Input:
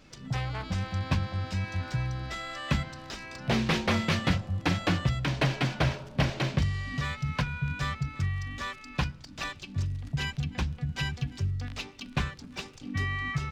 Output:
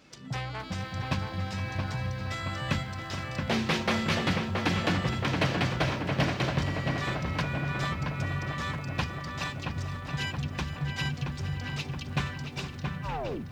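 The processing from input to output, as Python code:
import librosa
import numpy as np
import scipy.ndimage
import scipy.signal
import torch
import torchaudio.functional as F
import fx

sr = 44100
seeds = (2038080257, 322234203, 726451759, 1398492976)

y = fx.tape_stop_end(x, sr, length_s=0.87)
y = fx.highpass(y, sr, hz=150.0, slope=6)
y = fx.echo_filtered(y, sr, ms=674, feedback_pct=71, hz=2300.0, wet_db=-4)
y = fx.echo_crushed(y, sr, ms=466, feedback_pct=35, bits=9, wet_db=-12.5)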